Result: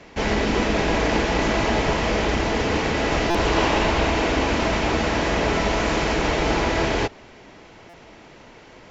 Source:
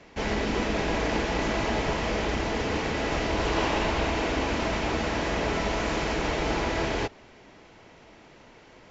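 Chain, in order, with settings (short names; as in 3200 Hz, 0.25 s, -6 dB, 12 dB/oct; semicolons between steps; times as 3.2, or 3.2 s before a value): stuck buffer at 3.3/7.89, samples 256, times 7; gain +6 dB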